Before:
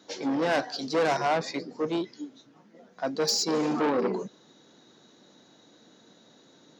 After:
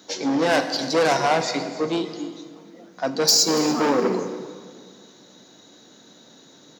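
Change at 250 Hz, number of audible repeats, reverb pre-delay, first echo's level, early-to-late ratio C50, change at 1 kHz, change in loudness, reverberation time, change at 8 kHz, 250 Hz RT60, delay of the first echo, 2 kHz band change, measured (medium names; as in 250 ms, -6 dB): +5.5 dB, 1, 9 ms, -17.5 dB, 9.5 dB, +6.0 dB, +6.5 dB, 2.0 s, +11.0 dB, 2.3 s, 286 ms, +6.5 dB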